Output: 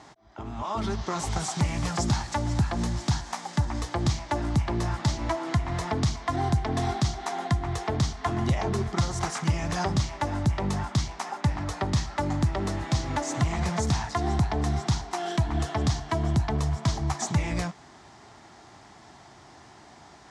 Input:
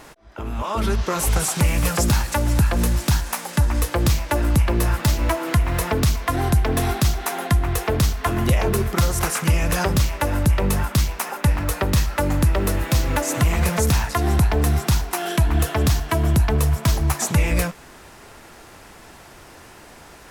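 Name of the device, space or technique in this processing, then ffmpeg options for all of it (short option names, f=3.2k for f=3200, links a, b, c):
car door speaker: -af "highpass=82,equalizer=f=120:t=q:w=4:g=3,equalizer=f=500:t=q:w=4:g=-10,equalizer=f=770:t=q:w=4:g=5,equalizer=f=1.5k:t=q:w=4:g=-5,equalizer=f=2.6k:t=q:w=4:g=-8,lowpass=f=7k:w=0.5412,lowpass=f=7k:w=1.3066,volume=-5dB"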